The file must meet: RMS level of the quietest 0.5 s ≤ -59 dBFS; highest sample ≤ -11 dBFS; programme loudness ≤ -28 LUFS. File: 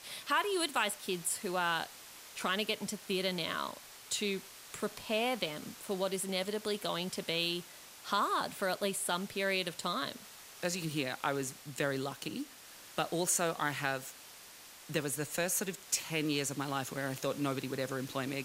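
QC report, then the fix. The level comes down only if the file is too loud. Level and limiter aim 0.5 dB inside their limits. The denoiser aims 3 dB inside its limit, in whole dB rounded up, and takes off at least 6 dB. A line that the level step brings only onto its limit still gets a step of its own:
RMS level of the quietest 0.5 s -53 dBFS: fail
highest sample -16.0 dBFS: pass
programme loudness -35.0 LUFS: pass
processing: noise reduction 9 dB, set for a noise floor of -53 dBFS

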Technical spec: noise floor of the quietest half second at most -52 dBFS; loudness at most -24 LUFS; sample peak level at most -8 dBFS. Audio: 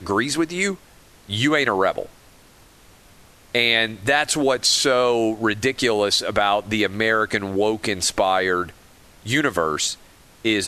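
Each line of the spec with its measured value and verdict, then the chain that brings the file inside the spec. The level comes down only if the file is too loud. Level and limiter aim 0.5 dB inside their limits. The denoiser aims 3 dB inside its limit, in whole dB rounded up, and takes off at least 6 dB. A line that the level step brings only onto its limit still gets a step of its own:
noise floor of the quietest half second -50 dBFS: fail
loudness -20.0 LUFS: fail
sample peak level -4.5 dBFS: fail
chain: trim -4.5 dB

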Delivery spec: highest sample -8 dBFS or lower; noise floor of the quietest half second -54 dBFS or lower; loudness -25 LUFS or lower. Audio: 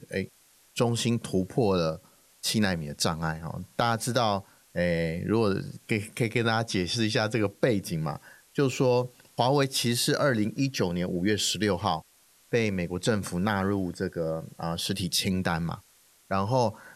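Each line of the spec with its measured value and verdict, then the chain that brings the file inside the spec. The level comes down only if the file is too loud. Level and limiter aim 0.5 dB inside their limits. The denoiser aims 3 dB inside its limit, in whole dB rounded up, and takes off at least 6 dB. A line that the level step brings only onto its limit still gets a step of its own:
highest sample -10.5 dBFS: pass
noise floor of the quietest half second -61 dBFS: pass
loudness -28.0 LUFS: pass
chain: none needed

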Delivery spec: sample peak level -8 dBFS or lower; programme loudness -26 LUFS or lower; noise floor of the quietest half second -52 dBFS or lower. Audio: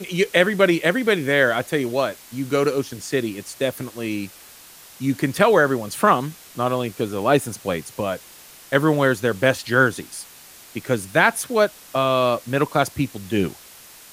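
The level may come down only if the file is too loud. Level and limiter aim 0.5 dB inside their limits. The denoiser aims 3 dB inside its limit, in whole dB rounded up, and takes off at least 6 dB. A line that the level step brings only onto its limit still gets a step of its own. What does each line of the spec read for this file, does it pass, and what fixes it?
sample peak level -1.5 dBFS: fail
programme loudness -21.0 LUFS: fail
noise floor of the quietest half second -45 dBFS: fail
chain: noise reduction 6 dB, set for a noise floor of -45 dBFS; trim -5.5 dB; peak limiter -8.5 dBFS

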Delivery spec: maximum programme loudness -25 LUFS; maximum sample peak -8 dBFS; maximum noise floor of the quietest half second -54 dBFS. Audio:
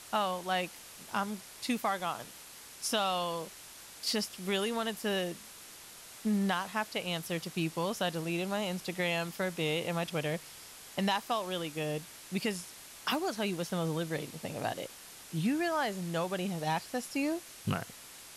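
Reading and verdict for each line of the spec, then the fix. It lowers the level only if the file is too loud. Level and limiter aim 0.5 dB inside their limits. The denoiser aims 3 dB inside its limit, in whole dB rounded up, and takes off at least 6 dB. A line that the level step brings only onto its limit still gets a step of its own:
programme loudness -34.0 LUFS: pass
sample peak -17.5 dBFS: pass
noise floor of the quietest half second -51 dBFS: fail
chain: noise reduction 6 dB, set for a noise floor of -51 dBFS

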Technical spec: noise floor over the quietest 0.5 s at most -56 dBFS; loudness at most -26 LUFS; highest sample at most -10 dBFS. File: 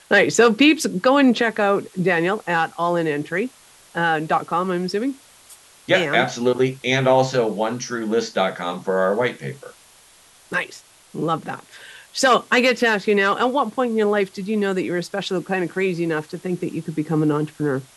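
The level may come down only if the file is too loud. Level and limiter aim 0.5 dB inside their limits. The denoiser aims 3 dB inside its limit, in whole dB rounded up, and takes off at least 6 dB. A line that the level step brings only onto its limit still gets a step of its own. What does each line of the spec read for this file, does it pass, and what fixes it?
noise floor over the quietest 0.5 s -51 dBFS: fail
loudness -20.0 LUFS: fail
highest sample -2.5 dBFS: fail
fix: trim -6.5 dB; peak limiter -10.5 dBFS

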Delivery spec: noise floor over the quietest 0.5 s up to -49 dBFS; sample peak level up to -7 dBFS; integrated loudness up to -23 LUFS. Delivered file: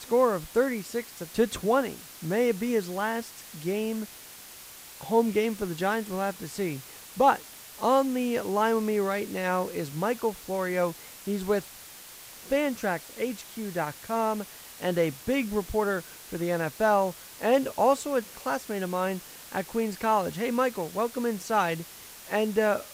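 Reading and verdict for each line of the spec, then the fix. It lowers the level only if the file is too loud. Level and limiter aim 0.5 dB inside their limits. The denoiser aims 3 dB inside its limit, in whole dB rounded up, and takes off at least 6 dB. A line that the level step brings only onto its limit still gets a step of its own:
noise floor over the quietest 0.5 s -46 dBFS: fail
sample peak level -10.0 dBFS: pass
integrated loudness -28.0 LUFS: pass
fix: noise reduction 6 dB, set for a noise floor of -46 dBFS

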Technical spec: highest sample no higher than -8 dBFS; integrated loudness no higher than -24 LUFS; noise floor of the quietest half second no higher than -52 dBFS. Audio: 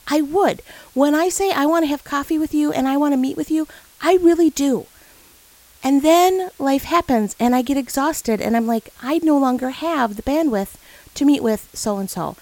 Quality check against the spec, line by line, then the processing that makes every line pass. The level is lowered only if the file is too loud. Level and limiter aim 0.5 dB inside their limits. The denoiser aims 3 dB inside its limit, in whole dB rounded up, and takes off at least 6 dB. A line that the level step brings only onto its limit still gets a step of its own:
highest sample -2.5 dBFS: fail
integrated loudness -18.5 LUFS: fail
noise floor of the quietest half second -49 dBFS: fail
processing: trim -6 dB

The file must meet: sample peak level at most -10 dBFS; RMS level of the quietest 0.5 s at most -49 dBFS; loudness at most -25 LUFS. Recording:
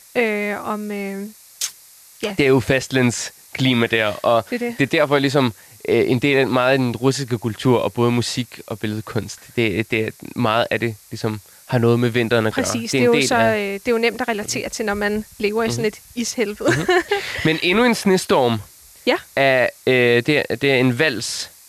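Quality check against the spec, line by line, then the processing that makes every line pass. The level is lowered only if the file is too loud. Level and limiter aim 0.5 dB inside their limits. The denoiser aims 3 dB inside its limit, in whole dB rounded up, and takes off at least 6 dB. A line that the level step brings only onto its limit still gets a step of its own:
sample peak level -5.5 dBFS: fail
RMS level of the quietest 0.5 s -46 dBFS: fail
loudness -19.0 LUFS: fail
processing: trim -6.5 dB

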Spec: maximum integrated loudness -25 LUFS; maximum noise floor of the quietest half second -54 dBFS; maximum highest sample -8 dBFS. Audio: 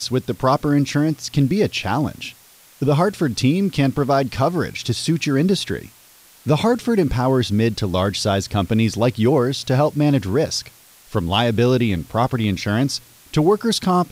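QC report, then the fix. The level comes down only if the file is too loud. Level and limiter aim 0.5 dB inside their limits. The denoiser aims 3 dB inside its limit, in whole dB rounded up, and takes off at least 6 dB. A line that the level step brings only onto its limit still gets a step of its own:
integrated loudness -19.5 LUFS: fail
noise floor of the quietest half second -49 dBFS: fail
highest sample -4.5 dBFS: fail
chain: trim -6 dB

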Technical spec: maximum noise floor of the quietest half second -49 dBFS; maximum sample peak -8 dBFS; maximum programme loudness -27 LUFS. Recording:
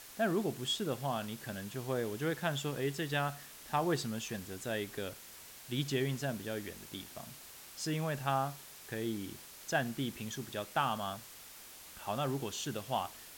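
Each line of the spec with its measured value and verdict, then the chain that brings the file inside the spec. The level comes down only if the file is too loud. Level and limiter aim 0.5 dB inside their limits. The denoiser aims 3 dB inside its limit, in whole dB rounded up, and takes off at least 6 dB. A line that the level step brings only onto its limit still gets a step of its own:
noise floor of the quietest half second -52 dBFS: pass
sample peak -17.5 dBFS: pass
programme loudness -37.0 LUFS: pass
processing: none needed

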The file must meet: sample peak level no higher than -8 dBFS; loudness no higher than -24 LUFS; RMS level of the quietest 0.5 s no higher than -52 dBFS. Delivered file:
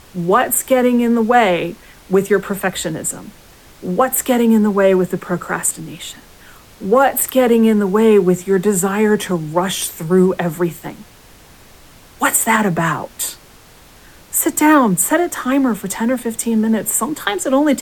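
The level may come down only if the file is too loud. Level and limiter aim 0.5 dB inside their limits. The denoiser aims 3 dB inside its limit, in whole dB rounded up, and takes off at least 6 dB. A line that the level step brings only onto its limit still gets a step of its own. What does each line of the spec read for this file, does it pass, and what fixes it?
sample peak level -2.5 dBFS: fail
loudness -15.5 LUFS: fail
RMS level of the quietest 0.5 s -44 dBFS: fail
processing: trim -9 dB

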